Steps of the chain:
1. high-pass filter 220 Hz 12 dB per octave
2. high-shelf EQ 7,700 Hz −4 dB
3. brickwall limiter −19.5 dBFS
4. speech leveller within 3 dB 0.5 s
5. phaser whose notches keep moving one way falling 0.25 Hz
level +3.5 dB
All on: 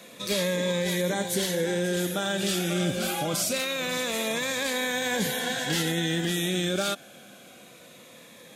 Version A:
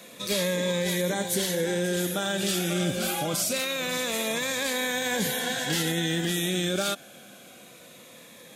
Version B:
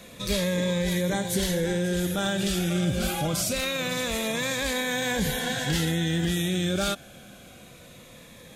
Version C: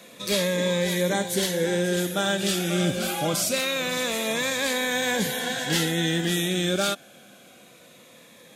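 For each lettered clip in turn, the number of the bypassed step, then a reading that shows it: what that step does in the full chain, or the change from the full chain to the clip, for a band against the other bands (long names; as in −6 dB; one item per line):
2, 8 kHz band +1.5 dB
1, 125 Hz band +5.0 dB
3, average gain reduction 1.5 dB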